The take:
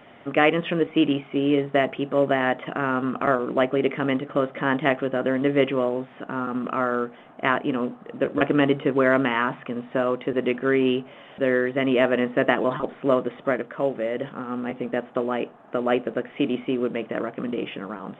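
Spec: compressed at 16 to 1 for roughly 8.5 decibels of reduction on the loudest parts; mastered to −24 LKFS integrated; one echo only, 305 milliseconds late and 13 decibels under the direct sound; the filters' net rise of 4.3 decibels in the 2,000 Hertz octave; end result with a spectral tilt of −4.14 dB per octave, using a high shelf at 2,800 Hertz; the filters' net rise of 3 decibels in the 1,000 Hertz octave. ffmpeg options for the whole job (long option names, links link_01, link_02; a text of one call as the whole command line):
ffmpeg -i in.wav -af "equalizer=frequency=1000:width_type=o:gain=3,equalizer=frequency=2000:width_type=o:gain=5.5,highshelf=frequency=2800:gain=-3.5,acompressor=threshold=-20dB:ratio=16,aecho=1:1:305:0.224,volume=3dB" out.wav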